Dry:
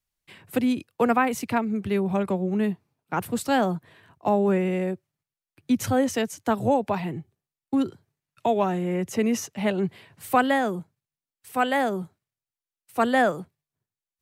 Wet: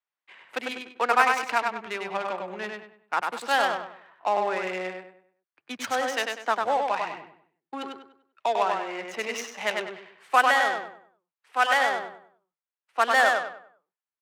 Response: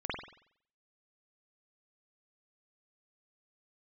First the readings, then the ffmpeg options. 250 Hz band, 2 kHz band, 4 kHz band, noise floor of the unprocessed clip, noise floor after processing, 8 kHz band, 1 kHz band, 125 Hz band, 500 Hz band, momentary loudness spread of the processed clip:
-17.0 dB, +6.0 dB, +5.0 dB, under -85 dBFS, under -85 dBFS, -2.0 dB, +2.5 dB, under -20 dB, -4.0 dB, 17 LU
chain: -filter_complex "[0:a]asplit=2[a][b];[b]aecho=0:1:98|196|294|392|490:0.668|0.241|0.0866|0.0312|0.0112[c];[a][c]amix=inputs=2:normalize=0,adynamicsmooth=sensitivity=4.5:basefreq=1.7k,highpass=970,volume=5dB"

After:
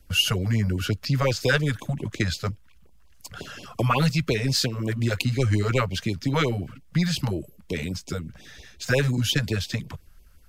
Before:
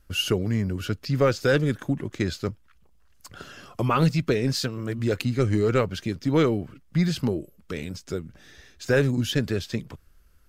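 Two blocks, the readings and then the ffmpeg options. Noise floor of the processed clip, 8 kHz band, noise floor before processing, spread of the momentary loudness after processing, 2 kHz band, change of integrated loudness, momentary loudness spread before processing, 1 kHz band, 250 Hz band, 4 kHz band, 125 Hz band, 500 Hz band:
-52 dBFS, +5.0 dB, -57 dBFS, 14 LU, +3.0 dB, 0.0 dB, 13 LU, +0.5 dB, -2.0 dB, +5.0 dB, +2.0 dB, -3.5 dB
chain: -filter_complex "[0:a]acrossover=split=130|660|4200[a][b][c][d];[b]acompressor=threshold=-31dB:ratio=6[e];[a][e][c][d]amix=inputs=4:normalize=0,afftfilt=real='re*(1-between(b*sr/1024,280*pow(1600/280,0.5+0.5*sin(2*PI*5.6*pts/sr))/1.41,280*pow(1600/280,0.5+0.5*sin(2*PI*5.6*pts/sr))*1.41))':imag='im*(1-between(b*sr/1024,280*pow(1600/280,0.5+0.5*sin(2*PI*5.6*pts/sr))/1.41,280*pow(1600/280,0.5+0.5*sin(2*PI*5.6*pts/sr))*1.41))':win_size=1024:overlap=0.75,volume=5dB"

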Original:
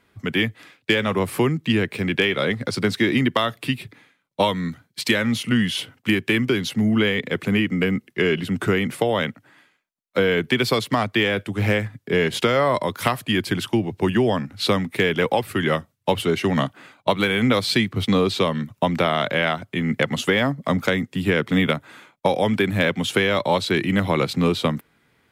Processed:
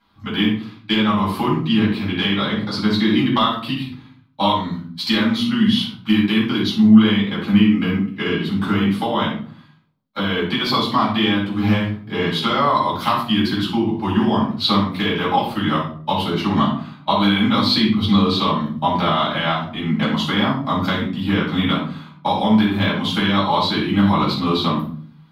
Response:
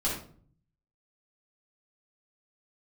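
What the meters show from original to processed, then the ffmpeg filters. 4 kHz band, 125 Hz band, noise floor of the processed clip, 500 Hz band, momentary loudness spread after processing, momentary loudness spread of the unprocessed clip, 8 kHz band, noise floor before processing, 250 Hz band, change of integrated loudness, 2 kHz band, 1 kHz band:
+4.5 dB, +2.5 dB, -45 dBFS, -3.5 dB, 7 LU, 5 LU, n/a, -68 dBFS, +5.5 dB, +3.0 dB, -2.0 dB, +6.0 dB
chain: -filter_complex "[0:a]equalizer=f=125:t=o:w=1:g=-4,equalizer=f=250:t=o:w=1:g=5,equalizer=f=500:t=o:w=1:g=-10,equalizer=f=1k:t=o:w=1:g=11,equalizer=f=2k:t=o:w=1:g=-6,equalizer=f=4k:t=o:w=1:g=11,equalizer=f=8k:t=o:w=1:g=-10[a];[1:a]atrim=start_sample=2205[b];[a][b]afir=irnorm=-1:irlink=0,volume=-8dB"

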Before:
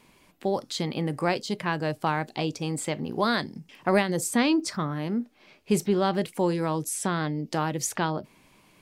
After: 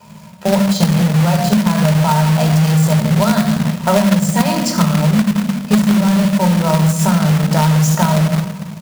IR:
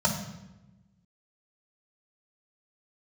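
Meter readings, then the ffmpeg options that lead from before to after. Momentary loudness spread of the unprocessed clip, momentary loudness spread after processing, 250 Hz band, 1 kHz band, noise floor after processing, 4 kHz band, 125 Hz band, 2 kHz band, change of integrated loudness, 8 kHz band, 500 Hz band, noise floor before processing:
7 LU, 3 LU, +15.5 dB, +10.5 dB, -35 dBFS, +11.0 dB, +20.0 dB, +8.0 dB, +13.5 dB, +10.0 dB, +8.5 dB, -60 dBFS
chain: -filter_complex "[0:a]asplit=2[a][b];[b]alimiter=limit=-19dB:level=0:latency=1:release=334,volume=1dB[c];[a][c]amix=inputs=2:normalize=0,aecho=1:1:24|78:0.178|0.2[d];[1:a]atrim=start_sample=2205[e];[d][e]afir=irnorm=-1:irlink=0,acompressor=threshold=-5dB:ratio=8,acrusher=bits=2:mode=log:mix=0:aa=0.000001,volume=-5dB"

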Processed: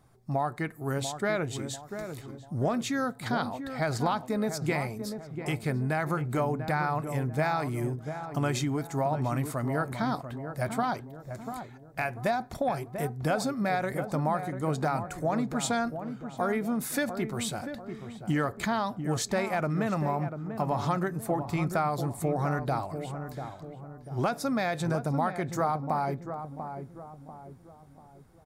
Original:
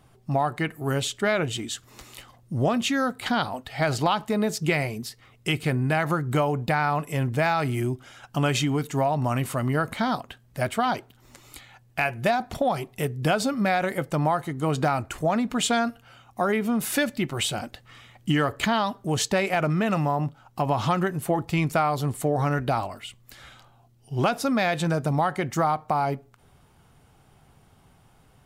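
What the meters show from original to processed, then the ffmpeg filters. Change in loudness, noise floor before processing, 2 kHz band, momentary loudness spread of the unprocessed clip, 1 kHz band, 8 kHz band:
-5.0 dB, -58 dBFS, -6.0 dB, 8 LU, -4.5 dB, -5.0 dB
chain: -filter_complex "[0:a]equalizer=f=2.9k:w=3.6:g=-11.5,asplit=2[a][b];[b]adelay=692,lowpass=f=1k:p=1,volume=-7.5dB,asplit=2[c][d];[d]adelay=692,lowpass=f=1k:p=1,volume=0.47,asplit=2[e][f];[f]adelay=692,lowpass=f=1k:p=1,volume=0.47,asplit=2[g][h];[h]adelay=692,lowpass=f=1k:p=1,volume=0.47,asplit=2[i][j];[j]adelay=692,lowpass=f=1k:p=1,volume=0.47[k];[c][e][g][i][k]amix=inputs=5:normalize=0[l];[a][l]amix=inputs=2:normalize=0,volume=-5dB"

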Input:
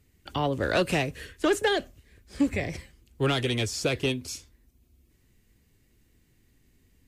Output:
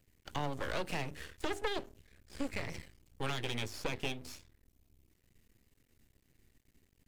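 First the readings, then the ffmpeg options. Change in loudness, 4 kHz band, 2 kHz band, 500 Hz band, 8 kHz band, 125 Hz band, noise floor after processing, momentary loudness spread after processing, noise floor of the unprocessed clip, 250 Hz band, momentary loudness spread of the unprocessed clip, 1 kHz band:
-11.5 dB, -10.0 dB, -10.5 dB, -13.5 dB, -12.0 dB, -11.5 dB, -73 dBFS, 14 LU, -65 dBFS, -14.0 dB, 11 LU, -9.0 dB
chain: -filter_complex "[0:a]acrossover=split=560|4100[a][b][c];[a]acompressor=threshold=-31dB:ratio=4[d];[b]acompressor=threshold=-33dB:ratio=4[e];[c]acompressor=threshold=-49dB:ratio=4[f];[d][e][f]amix=inputs=3:normalize=0,bandreject=f=50:t=h:w=6,bandreject=f=100:t=h:w=6,bandreject=f=150:t=h:w=6,bandreject=f=200:t=h:w=6,bandreject=f=250:t=h:w=6,bandreject=f=300:t=h:w=6,bandreject=f=350:t=h:w=6,bandreject=f=400:t=h:w=6,aeval=exprs='max(val(0),0)':c=same,volume=-1.5dB"

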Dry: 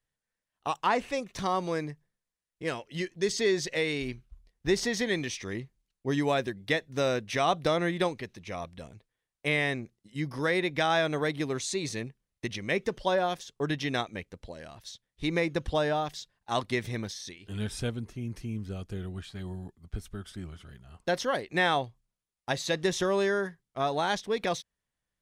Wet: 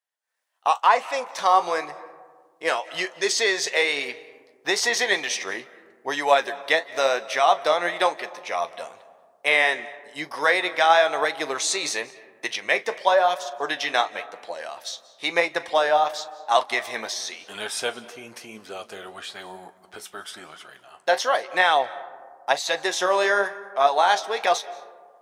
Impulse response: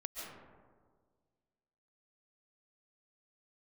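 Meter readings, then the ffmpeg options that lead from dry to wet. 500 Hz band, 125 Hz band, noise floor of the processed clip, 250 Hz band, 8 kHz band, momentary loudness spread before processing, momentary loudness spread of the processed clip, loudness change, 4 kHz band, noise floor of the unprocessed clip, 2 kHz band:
+5.5 dB, under -15 dB, -57 dBFS, -6.0 dB, +9.5 dB, 15 LU, 18 LU, +8.0 dB, +8.5 dB, under -85 dBFS, +9.0 dB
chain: -filter_complex "[0:a]highpass=f=740:t=q:w=1.6,dynaudnorm=f=210:g=3:m=15dB,flanger=delay=4.6:depth=9.1:regen=57:speed=0.97:shape=triangular,asplit=2[a][b];[1:a]atrim=start_sample=2205,adelay=40[c];[b][c]afir=irnorm=-1:irlink=0,volume=-14.5dB[d];[a][d]amix=inputs=2:normalize=0"

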